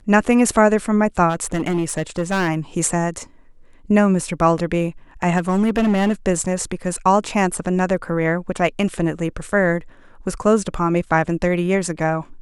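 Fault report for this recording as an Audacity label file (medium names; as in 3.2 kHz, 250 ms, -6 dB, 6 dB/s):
1.290000	2.490000	clipped -15.5 dBFS
5.370000	6.130000	clipped -13 dBFS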